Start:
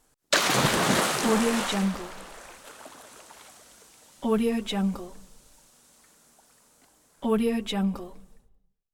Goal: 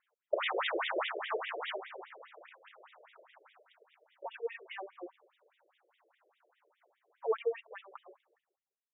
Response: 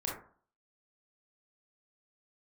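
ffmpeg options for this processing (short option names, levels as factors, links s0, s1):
-filter_complex "[0:a]asettb=1/sr,asplit=3[s0][s1][s2];[s0]atrim=end=4.664[s3];[s1]atrim=start=4.66:end=7.46,asetpts=PTS-STARTPTS,afade=t=in:d=0.004:c=qsin,afade=t=out:st=2.796:d=0.004:c=qsin,equalizer=f=150:w=0.34:g=5.5[s4];[s2]atrim=start=7.456[s5];[s3][s4]acrossfade=d=0.004:c1=hsin:c2=qsin[s6];[s6][s5]acrossfade=d=0.004:c1=qsin:c2=hsin,afftfilt=real='re*between(b*sr/1024,450*pow(2700/450,0.5+0.5*sin(2*PI*4.9*pts/sr))/1.41,450*pow(2700/450,0.5+0.5*sin(2*PI*4.9*pts/sr))*1.41)':imag='im*between(b*sr/1024,450*pow(2700/450,0.5+0.5*sin(2*PI*4.9*pts/sr))/1.41,450*pow(2700/450,0.5+0.5*sin(2*PI*4.9*pts/sr))*1.41)':win_size=1024:overlap=0.75,volume=0.708"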